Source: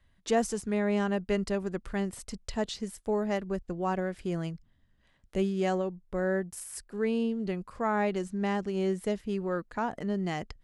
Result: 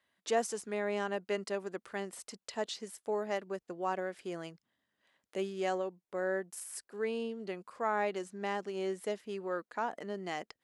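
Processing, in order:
high-pass filter 370 Hz 12 dB per octave
level −2.5 dB

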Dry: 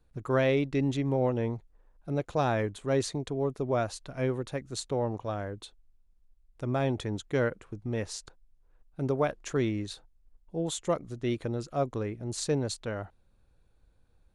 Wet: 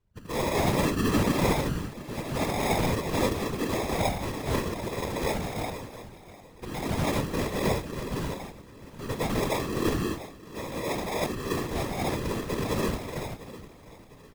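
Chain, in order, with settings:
reverb whose tail is shaped and stops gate 350 ms rising, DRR −7.5 dB
decimation without filtering 30×
on a send: repeating echo 703 ms, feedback 42%, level −16.5 dB
on the sum: random phases in short frames
level −6 dB

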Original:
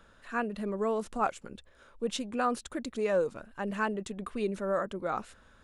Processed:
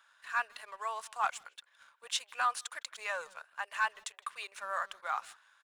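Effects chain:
inverse Chebyshev high-pass filter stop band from 210 Hz, stop band 70 dB
notch filter 1,300 Hz, Q 15
leveller curve on the samples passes 1
far-end echo of a speakerphone 160 ms, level −19 dB

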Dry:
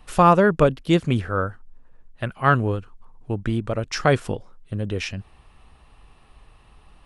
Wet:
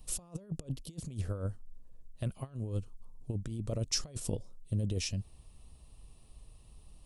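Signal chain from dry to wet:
parametric band 770 Hz −11 dB 0.49 octaves
compressor whose output falls as the input rises −26 dBFS, ratio −0.5
drawn EQ curve 110 Hz 0 dB, 410 Hz −6 dB, 720 Hz −1 dB, 1,500 Hz −20 dB, 4,700 Hz 0 dB, 8,100 Hz +7 dB
level −7.5 dB

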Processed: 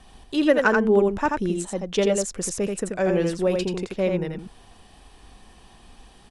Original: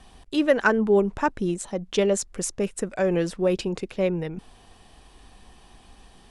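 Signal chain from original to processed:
single-tap delay 84 ms −4 dB

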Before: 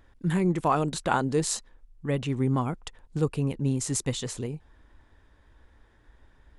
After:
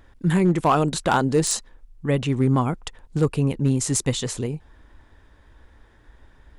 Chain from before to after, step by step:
hard clipping −17 dBFS, distortion −21 dB
level +6 dB

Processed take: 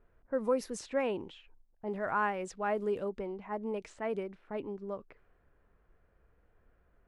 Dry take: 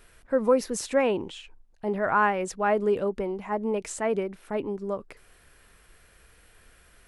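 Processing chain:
0:01.90–0:03.04: surface crackle 330 per second −53 dBFS
low-pass that shuts in the quiet parts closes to 900 Hz, open at −22.5 dBFS
level −8.5 dB

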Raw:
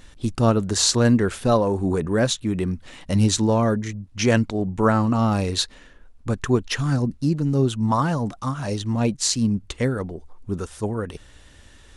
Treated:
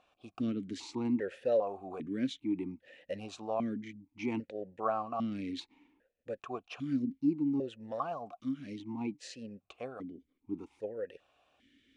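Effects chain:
formant filter that steps through the vowels 2.5 Hz
level −2 dB

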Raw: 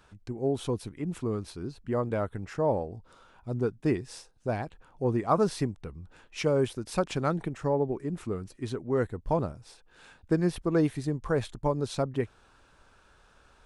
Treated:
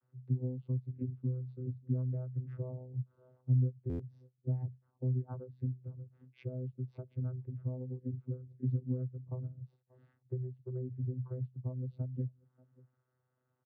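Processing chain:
Butterworth low-pass 4,900 Hz
mains-hum notches 50/100/150/200 Hz
slap from a distant wall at 100 metres, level −28 dB
dynamic equaliser 160 Hz, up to +7 dB, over −46 dBFS, Q 1.4
downward compressor 16 to 1, threshold −37 dBFS, peak gain reduction 21 dB
channel vocoder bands 16, saw 127 Hz
buffer that repeats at 0:03.89, samples 512, times 8
every bin expanded away from the loudest bin 1.5 to 1
level +8.5 dB

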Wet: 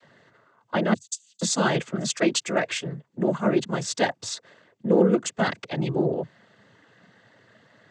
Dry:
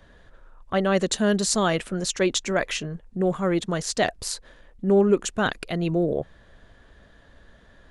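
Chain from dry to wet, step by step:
0:00.93–0:01.41: inverse Chebyshev high-pass filter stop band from 1,400 Hz, stop band 70 dB
cochlear-implant simulation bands 16

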